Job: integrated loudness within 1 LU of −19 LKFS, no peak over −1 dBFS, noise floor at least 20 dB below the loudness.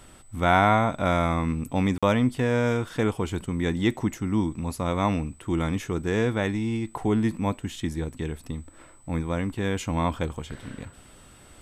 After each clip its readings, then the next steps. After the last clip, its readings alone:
number of dropouts 1; longest dropout 46 ms; interfering tone 8,000 Hz; level of the tone −56 dBFS; integrated loudness −26.0 LKFS; sample peak −5.5 dBFS; target loudness −19.0 LKFS
→ repair the gap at 0:01.98, 46 ms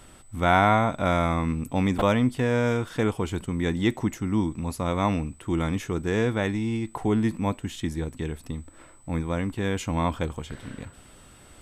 number of dropouts 0; interfering tone 8,000 Hz; level of the tone −56 dBFS
→ notch filter 8,000 Hz, Q 30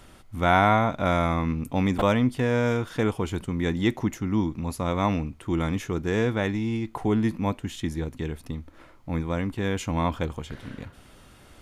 interfering tone none found; integrated loudness −26.0 LKFS; sample peak −5.5 dBFS; target loudness −19.0 LKFS
→ level +7 dB
brickwall limiter −1 dBFS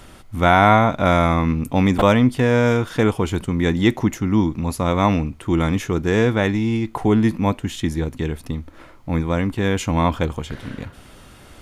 integrated loudness −19.0 LKFS; sample peak −1.0 dBFS; background noise floor −45 dBFS

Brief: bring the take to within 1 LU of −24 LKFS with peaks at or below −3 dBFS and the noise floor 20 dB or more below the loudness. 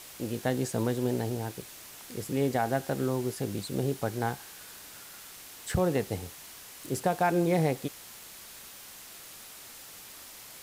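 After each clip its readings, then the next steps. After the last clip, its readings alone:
background noise floor −48 dBFS; target noise floor −51 dBFS; integrated loudness −30.5 LKFS; sample peak −15.5 dBFS; target loudness −24.0 LKFS
→ noise reduction from a noise print 6 dB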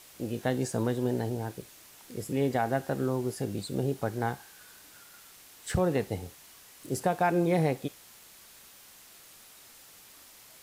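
background noise floor −54 dBFS; integrated loudness −30.5 LKFS; sample peak −15.5 dBFS; target loudness −24.0 LKFS
→ level +6.5 dB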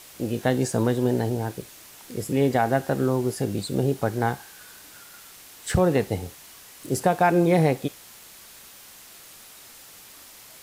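integrated loudness −24.0 LKFS; sample peak −9.0 dBFS; background noise floor −47 dBFS

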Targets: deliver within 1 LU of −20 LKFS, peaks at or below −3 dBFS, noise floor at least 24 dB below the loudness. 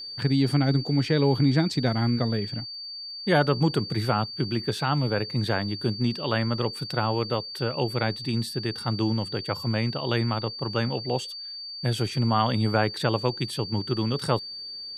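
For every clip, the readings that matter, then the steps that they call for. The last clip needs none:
crackle rate 45 per second; interfering tone 4,600 Hz; level of the tone −35 dBFS; integrated loudness −26.0 LKFS; sample peak −7.5 dBFS; target loudness −20.0 LKFS
→ click removal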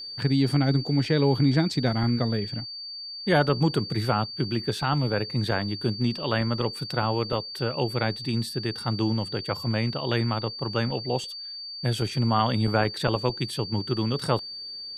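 crackle rate 0.47 per second; interfering tone 4,600 Hz; level of the tone −35 dBFS
→ notch filter 4,600 Hz, Q 30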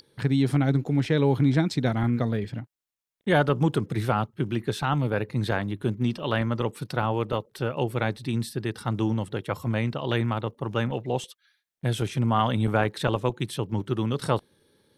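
interfering tone none found; integrated loudness −26.5 LKFS; sample peak −7.5 dBFS; target loudness −20.0 LKFS
→ level +6.5 dB
brickwall limiter −3 dBFS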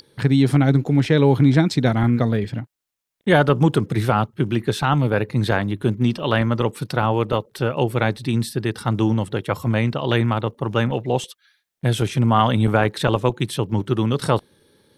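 integrated loudness −20.0 LKFS; sample peak −3.0 dBFS; background noise floor −76 dBFS

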